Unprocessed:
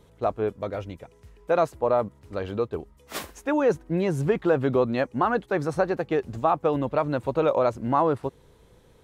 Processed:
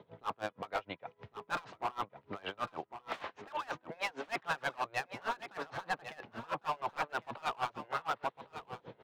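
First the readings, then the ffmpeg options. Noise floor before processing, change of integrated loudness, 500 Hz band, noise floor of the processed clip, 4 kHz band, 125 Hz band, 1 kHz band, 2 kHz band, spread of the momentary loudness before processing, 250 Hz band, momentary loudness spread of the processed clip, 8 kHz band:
-57 dBFS, -14.0 dB, -20.0 dB, -72 dBFS, -1.5 dB, -22.0 dB, -9.0 dB, -4.5 dB, 12 LU, -22.5 dB, 10 LU, -8.5 dB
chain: -filter_complex "[0:a]lowpass=f=3600:w=0.5412,lowpass=f=3600:w=1.3066,afftfilt=real='re*lt(hypot(re,im),0.2)':imag='im*lt(hypot(re,im),0.2)':win_size=1024:overlap=0.75,highpass=f=110:w=0.5412,highpass=f=110:w=1.3066,equalizer=f=700:w=1.1:g=6,areverse,acompressor=mode=upward:threshold=0.00398:ratio=2.5,areverse,alimiter=limit=0.0708:level=0:latency=1:release=14,acrossover=split=720[s0][s1];[s0]acompressor=threshold=0.00355:ratio=10[s2];[s2][s1]amix=inputs=2:normalize=0,asoftclip=type=hard:threshold=0.0188,aecho=1:1:1103:0.266,aeval=exprs='val(0)*pow(10,-26*(0.5-0.5*cos(2*PI*6.4*n/s))/20)':c=same,volume=2.37"

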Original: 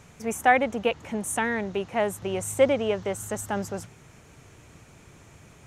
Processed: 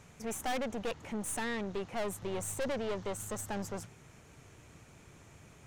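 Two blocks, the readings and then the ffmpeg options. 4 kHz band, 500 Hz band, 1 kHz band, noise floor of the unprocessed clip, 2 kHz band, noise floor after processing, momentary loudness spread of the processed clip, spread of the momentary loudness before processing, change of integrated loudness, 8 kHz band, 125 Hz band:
-7.0 dB, -11.5 dB, -13.5 dB, -53 dBFS, -13.5 dB, -58 dBFS, 21 LU, 10 LU, -11.0 dB, -6.0 dB, -7.0 dB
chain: -af "aeval=exprs='(tanh(28.2*val(0)+0.5)-tanh(0.5))/28.2':c=same,volume=0.708"

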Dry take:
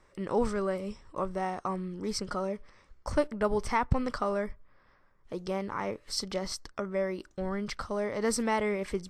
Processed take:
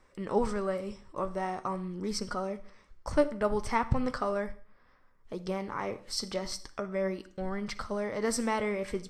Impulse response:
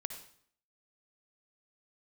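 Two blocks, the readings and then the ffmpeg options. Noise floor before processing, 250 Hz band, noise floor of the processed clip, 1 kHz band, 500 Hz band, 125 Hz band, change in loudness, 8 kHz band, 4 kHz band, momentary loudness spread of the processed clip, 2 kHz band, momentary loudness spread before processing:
-64 dBFS, -0.5 dB, -62 dBFS, -0.5 dB, -0.5 dB, -1.0 dB, -0.5 dB, -1.0 dB, -0.5 dB, 9 LU, -1.0 dB, 8 LU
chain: -filter_complex "[0:a]flanger=delay=3.9:depth=4.8:regen=70:speed=0.4:shape=sinusoidal,asplit=2[s0][s1];[1:a]atrim=start_sample=2205,asetrate=52920,aresample=44100[s2];[s1][s2]afir=irnorm=-1:irlink=0,volume=0.75[s3];[s0][s3]amix=inputs=2:normalize=0"

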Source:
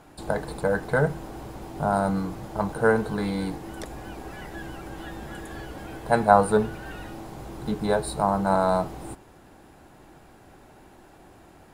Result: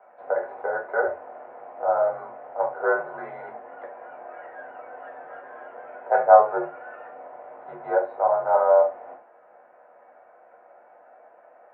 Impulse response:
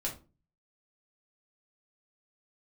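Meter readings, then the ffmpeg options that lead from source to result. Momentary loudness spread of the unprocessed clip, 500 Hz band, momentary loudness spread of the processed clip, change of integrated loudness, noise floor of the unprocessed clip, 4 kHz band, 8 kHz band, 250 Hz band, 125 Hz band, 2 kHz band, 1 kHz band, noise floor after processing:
17 LU, +3.0 dB, 23 LU, +2.0 dB, -52 dBFS, under -25 dB, under -35 dB, -16.0 dB, under -25 dB, -1.0 dB, +2.0 dB, -54 dBFS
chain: -filter_complex "[0:a]lowshelf=f=450:t=q:w=3:g=-13.5[s0];[1:a]atrim=start_sample=2205,atrim=end_sample=3969[s1];[s0][s1]afir=irnorm=-1:irlink=0,highpass=f=280:t=q:w=0.5412,highpass=f=280:t=q:w=1.307,lowpass=f=2100:t=q:w=0.5176,lowpass=f=2100:t=q:w=0.7071,lowpass=f=2100:t=q:w=1.932,afreqshift=-62,volume=0.596"

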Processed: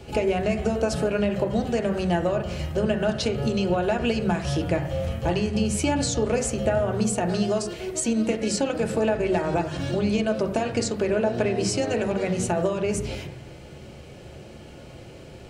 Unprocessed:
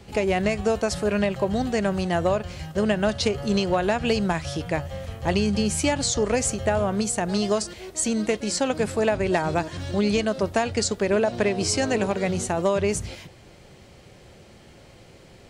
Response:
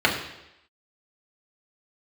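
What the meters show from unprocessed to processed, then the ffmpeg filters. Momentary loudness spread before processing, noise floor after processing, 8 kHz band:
5 LU, -43 dBFS, -3.0 dB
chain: -filter_complex "[0:a]acompressor=threshold=0.0501:ratio=6,asplit=2[s0][s1];[1:a]atrim=start_sample=2205,lowpass=2500,lowshelf=f=170:g=7.5[s2];[s1][s2]afir=irnorm=-1:irlink=0,volume=0.119[s3];[s0][s3]amix=inputs=2:normalize=0,volume=1.19"

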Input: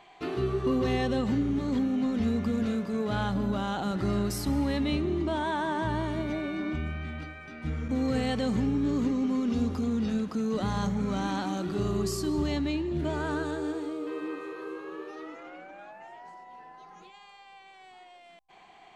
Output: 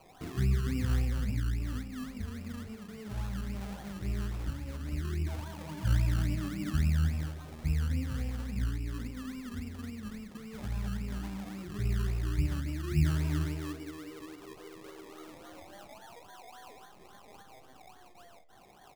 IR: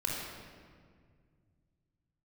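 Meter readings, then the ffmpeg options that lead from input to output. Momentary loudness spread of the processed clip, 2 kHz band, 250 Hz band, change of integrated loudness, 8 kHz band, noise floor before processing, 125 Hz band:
20 LU, -7.5 dB, -10.5 dB, -5.0 dB, -4.5 dB, -53 dBFS, +2.0 dB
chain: -filter_complex "[0:a]acrossover=split=170[s0][s1];[s0]aphaser=in_gain=1:out_gain=1:delay=2:decay=0.76:speed=0.15:type=sinusoidal[s2];[s1]acompressor=threshold=0.00708:ratio=6[s3];[s2][s3]amix=inputs=2:normalize=0,aecho=1:1:20|51:0.473|0.398,acrusher=samples=24:mix=1:aa=0.000001:lfo=1:lforange=14.4:lforate=3.6,flanger=delay=8.8:depth=7.1:regen=82:speed=1.1:shape=triangular"

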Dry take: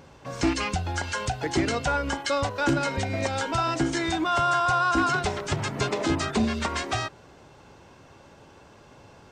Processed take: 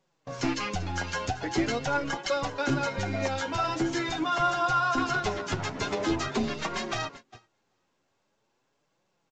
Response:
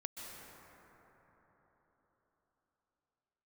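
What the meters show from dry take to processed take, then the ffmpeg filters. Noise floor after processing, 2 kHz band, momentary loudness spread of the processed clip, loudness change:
-75 dBFS, -3.0 dB, 7 LU, -3.0 dB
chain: -filter_complex "[0:a]aecho=1:1:391|782|1173:0.178|0.0445|0.0111,acrossover=split=110[s0][s1];[s0]acrusher=bits=5:dc=4:mix=0:aa=0.000001[s2];[s2][s1]amix=inputs=2:normalize=0,flanger=delay=5.2:depth=6.6:regen=1:speed=0.44:shape=triangular,agate=range=0.0501:threshold=0.00794:ratio=16:detection=peak" -ar 16000 -c:a pcm_mulaw

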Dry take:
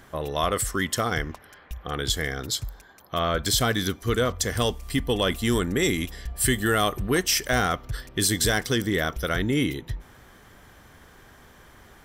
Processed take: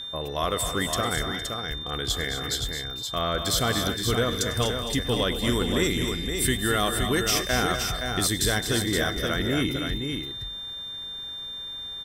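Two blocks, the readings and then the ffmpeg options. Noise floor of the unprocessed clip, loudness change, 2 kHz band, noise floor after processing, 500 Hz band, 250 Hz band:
-52 dBFS, -1.0 dB, -1.0 dB, -36 dBFS, -1.0 dB, -1.0 dB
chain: -af "aeval=exprs='val(0)+0.0282*sin(2*PI*3600*n/s)':c=same,aecho=1:1:101|216|246|460|520:0.126|0.299|0.282|0.126|0.501,volume=0.75"

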